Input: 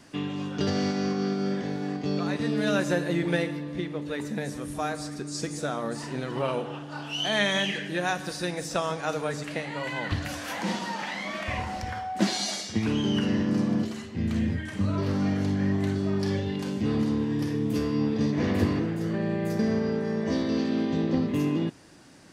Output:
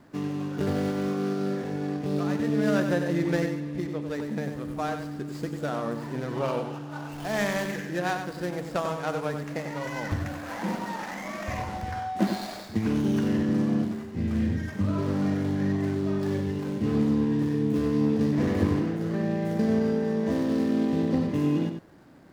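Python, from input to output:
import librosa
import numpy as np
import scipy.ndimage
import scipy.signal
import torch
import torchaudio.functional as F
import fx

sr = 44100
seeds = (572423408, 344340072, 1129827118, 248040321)

y = scipy.signal.medfilt(x, 15)
y = y + 10.0 ** (-7.5 / 20.0) * np.pad(y, (int(95 * sr / 1000.0), 0))[:len(y)]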